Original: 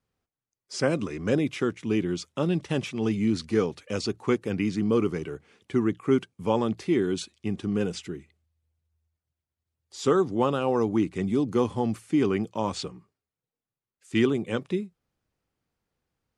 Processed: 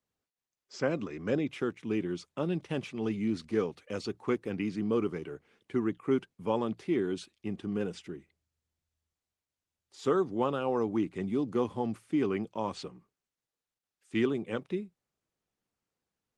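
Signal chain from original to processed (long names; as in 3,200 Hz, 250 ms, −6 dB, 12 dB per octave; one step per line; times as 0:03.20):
high-pass filter 150 Hz 6 dB per octave
high-shelf EQ 6,600 Hz −8.5 dB
level −4.5 dB
Opus 24 kbit/s 48,000 Hz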